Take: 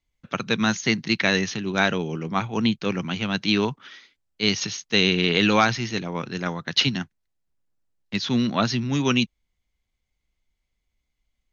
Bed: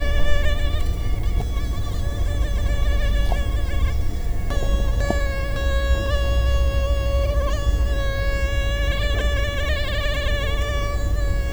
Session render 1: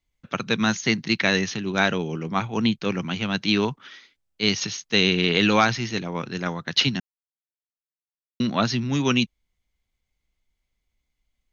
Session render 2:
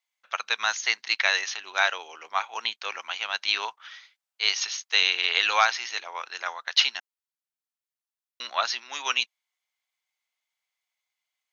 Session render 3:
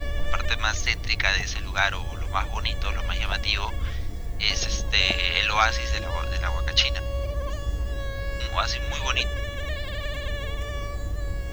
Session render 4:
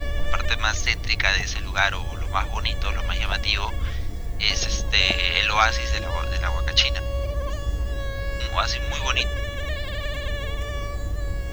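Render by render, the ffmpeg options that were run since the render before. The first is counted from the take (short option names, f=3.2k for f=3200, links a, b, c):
-filter_complex "[0:a]asplit=3[a][b][c];[a]atrim=end=7,asetpts=PTS-STARTPTS,afade=t=out:st=6.996:d=0.004:c=hsin[d];[b]atrim=start=7:end=8.4,asetpts=PTS-STARTPTS,volume=0[e];[c]atrim=start=8.4,asetpts=PTS-STARTPTS,afade=t=in:d=0.004:c=hsin[f];[d][e][f]concat=n=3:v=0:a=1"
-af "highpass=f=740:w=0.5412,highpass=f=740:w=1.3066"
-filter_complex "[1:a]volume=-8dB[a];[0:a][a]amix=inputs=2:normalize=0"
-af "volume=2dB"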